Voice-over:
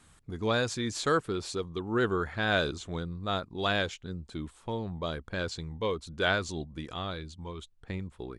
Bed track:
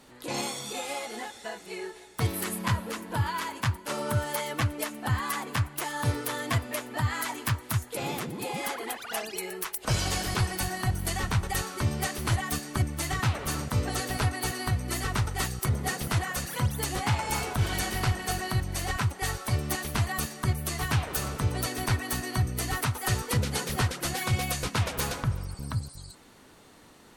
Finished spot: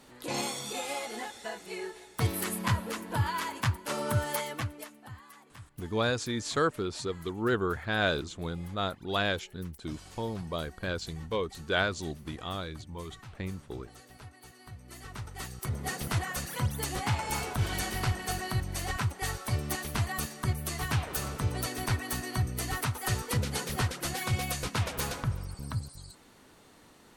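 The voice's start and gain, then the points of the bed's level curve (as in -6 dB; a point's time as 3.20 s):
5.50 s, -0.5 dB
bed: 4.37 s -1 dB
5.26 s -22 dB
14.51 s -22 dB
16.00 s -3 dB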